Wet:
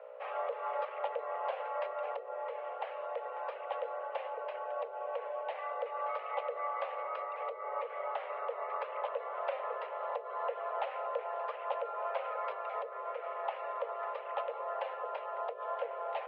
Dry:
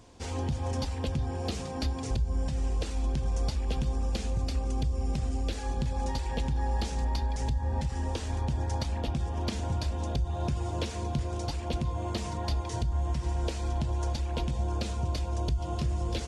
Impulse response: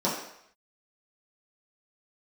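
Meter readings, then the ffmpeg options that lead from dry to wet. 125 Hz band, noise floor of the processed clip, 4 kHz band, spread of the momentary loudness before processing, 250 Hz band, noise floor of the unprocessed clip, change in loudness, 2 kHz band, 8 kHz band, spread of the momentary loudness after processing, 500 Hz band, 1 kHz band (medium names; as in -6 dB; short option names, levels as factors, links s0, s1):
under -40 dB, -44 dBFS, -15.0 dB, 2 LU, under -35 dB, -36 dBFS, -6.0 dB, 0.0 dB, under -35 dB, 3 LU, +2.5 dB, +3.0 dB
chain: -af "aeval=exprs='val(0)+0.0112*(sin(2*PI*60*n/s)+sin(2*PI*2*60*n/s)/2+sin(2*PI*3*60*n/s)/3+sin(2*PI*4*60*n/s)/4+sin(2*PI*5*60*n/s)/5)':c=same,highpass=f=180:t=q:w=0.5412,highpass=f=180:t=q:w=1.307,lowpass=f=2300:t=q:w=0.5176,lowpass=f=2300:t=q:w=0.7071,lowpass=f=2300:t=q:w=1.932,afreqshift=330"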